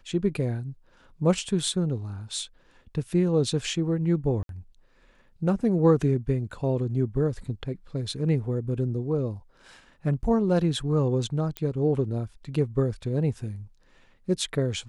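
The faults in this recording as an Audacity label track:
4.430000	4.490000	dropout 62 ms
11.570000	11.570000	pop -16 dBFS

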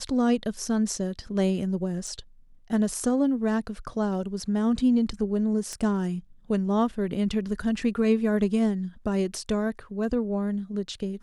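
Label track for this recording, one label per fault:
2.070000	2.070000	dropout 4 ms
5.730000	5.730000	pop -20 dBFS

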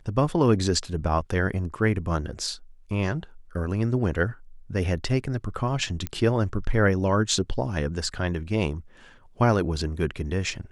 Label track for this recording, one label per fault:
6.070000	6.070000	pop -15 dBFS

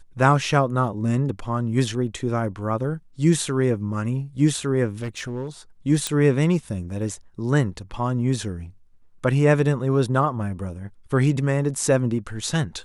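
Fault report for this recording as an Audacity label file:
5.010000	5.480000	clipped -24.5 dBFS
6.070000	6.070000	pop -9 dBFS

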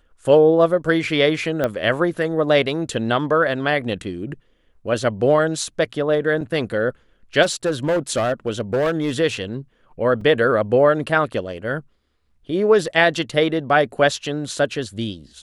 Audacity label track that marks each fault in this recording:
1.640000	1.640000	pop -9 dBFS
6.410000	6.410000	dropout 4.3 ms
7.420000	9.120000	clipped -15.5 dBFS
10.210000	10.210000	dropout 3.2 ms

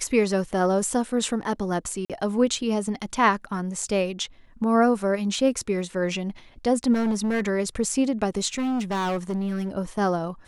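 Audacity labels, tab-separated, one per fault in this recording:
2.050000	2.100000	dropout 47 ms
6.930000	7.410000	clipped -20.5 dBFS
8.540000	9.690000	clipped -23 dBFS

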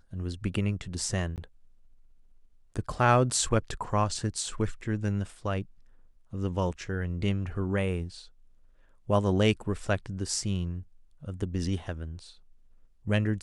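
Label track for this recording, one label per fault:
1.360000	1.380000	dropout 18 ms

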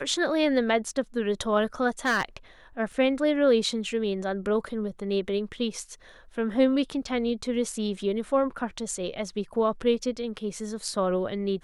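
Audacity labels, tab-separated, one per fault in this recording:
2.050000	2.230000	clipped -19.5 dBFS
2.920000	2.920000	dropout 2.6 ms

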